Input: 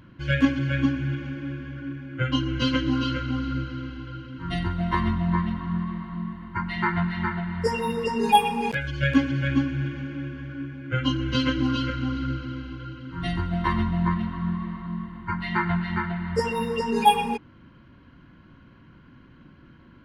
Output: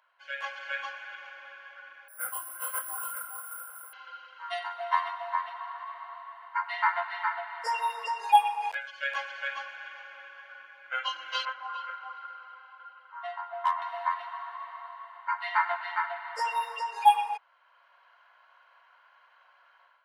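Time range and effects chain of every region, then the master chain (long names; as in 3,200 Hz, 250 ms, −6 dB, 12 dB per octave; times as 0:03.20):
0:02.08–0:03.93: flat-topped band-pass 830 Hz, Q 0.8 + bad sample-rate conversion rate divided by 4×, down none, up zero stuff + micro pitch shift up and down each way 43 cents
0:11.45–0:13.82: resonant band-pass 970 Hz, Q 1.4 + hard clipping −21 dBFS
whole clip: Butterworth high-pass 680 Hz 48 dB per octave; tilt shelving filter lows +7 dB, about 870 Hz; automatic gain control gain up to 10 dB; level −7 dB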